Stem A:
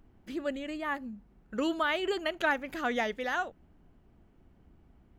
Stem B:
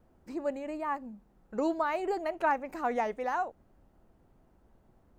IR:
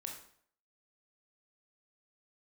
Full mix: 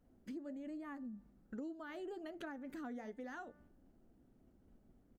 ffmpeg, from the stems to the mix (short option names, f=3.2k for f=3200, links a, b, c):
-filter_complex "[0:a]agate=range=-7dB:threshold=-57dB:ratio=16:detection=peak,bandreject=f=295.3:t=h:w=4,bandreject=f=590.6:t=h:w=4,bandreject=f=885.9:t=h:w=4,bandreject=f=1.1812k:t=h:w=4,bandreject=f=1.4765k:t=h:w=4,bandreject=f=1.7718k:t=h:w=4,bandreject=f=2.0671k:t=h:w=4,volume=-8dB[a];[1:a]adynamicequalizer=threshold=0.00631:dfrequency=320:dqfactor=1.9:tfrequency=320:tqfactor=1.9:attack=5:release=100:ratio=0.375:range=2:mode=boostabove:tftype=bell,flanger=delay=6.8:depth=4.7:regen=-62:speed=1.2:shape=sinusoidal,equalizer=f=100:t=o:w=0.67:g=-3,equalizer=f=250:t=o:w=0.67:g=8,equalizer=f=1k:t=o:w=0.67:g=-11,equalizer=f=2.5k:t=o:w=0.67:g=-12,adelay=1,volume=-2.5dB,asplit=2[b][c];[c]apad=whole_len=228446[d];[a][d]sidechaincompress=threshold=-46dB:ratio=6:attack=9:release=192[e];[e][b]amix=inputs=2:normalize=0,acompressor=threshold=-44dB:ratio=6"